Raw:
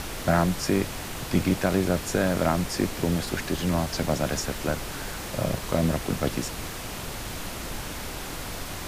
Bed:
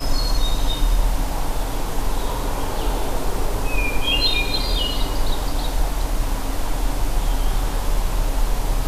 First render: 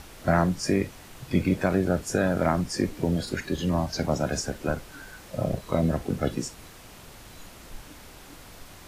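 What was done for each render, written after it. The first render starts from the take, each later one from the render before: noise print and reduce 12 dB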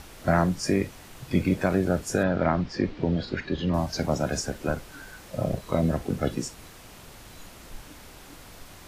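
2.23–3.74 s: low-pass 4.5 kHz 24 dB/octave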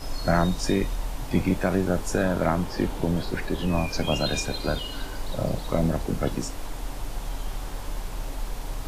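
add bed -11.5 dB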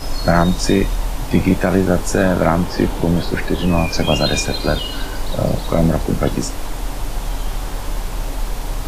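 trim +9 dB; peak limiter -2 dBFS, peak gain reduction 3 dB

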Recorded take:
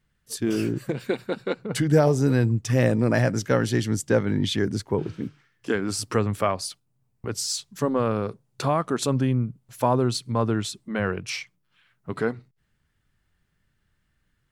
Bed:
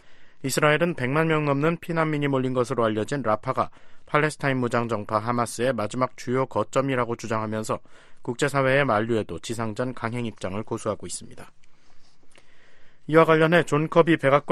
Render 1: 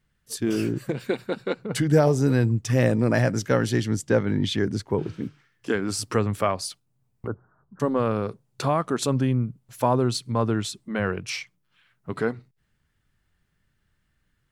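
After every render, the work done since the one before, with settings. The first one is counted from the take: 3.80–4.90 s: treble shelf 8 kHz -7 dB; 7.27–7.80 s: steep low-pass 1.5 kHz 72 dB/octave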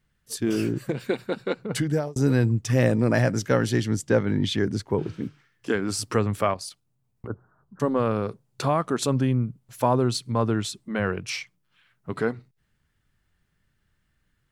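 1.74–2.16 s: fade out; 6.54–7.31 s: level held to a coarse grid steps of 9 dB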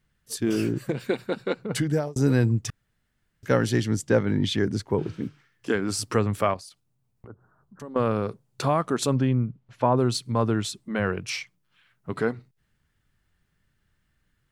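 2.70–3.43 s: room tone; 6.60–7.96 s: compression 2:1, threshold -48 dBFS; 9.15–9.96 s: low-pass 5.3 kHz -> 2.4 kHz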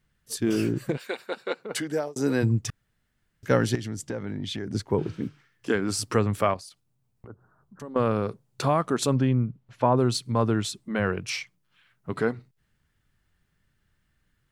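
0.96–2.42 s: high-pass 680 Hz -> 230 Hz; 3.75–4.75 s: compression 5:1, threshold -29 dBFS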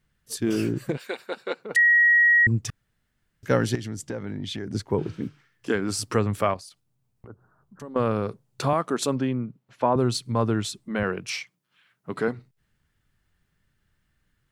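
1.76–2.47 s: bleep 1.9 kHz -14 dBFS; 8.73–9.96 s: high-pass 190 Hz; 11.03–12.28 s: high-pass 150 Hz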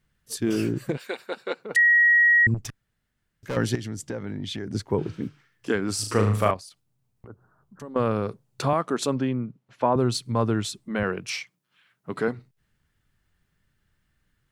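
2.54–3.57 s: valve stage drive 26 dB, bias 0.6; 5.95–6.51 s: flutter echo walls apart 6.5 m, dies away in 0.48 s; 8.62–10.12 s: treble shelf 10 kHz -6.5 dB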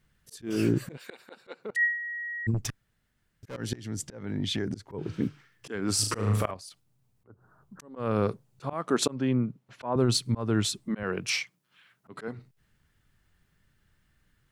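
slow attack 288 ms; compressor with a negative ratio -24 dBFS, ratio -0.5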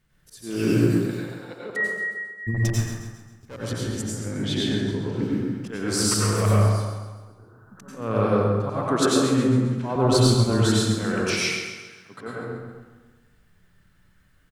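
feedback delay 134 ms, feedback 46%, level -9 dB; plate-style reverb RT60 1.2 s, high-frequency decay 0.5×, pre-delay 80 ms, DRR -5.5 dB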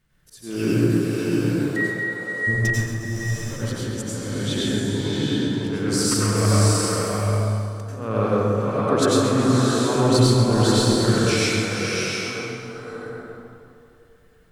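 tape echo 150 ms, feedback 80%, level -13.5 dB, low-pass 2.4 kHz; swelling reverb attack 710 ms, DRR 0 dB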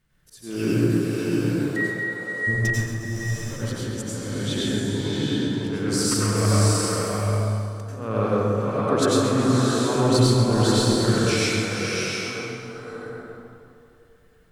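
trim -1.5 dB

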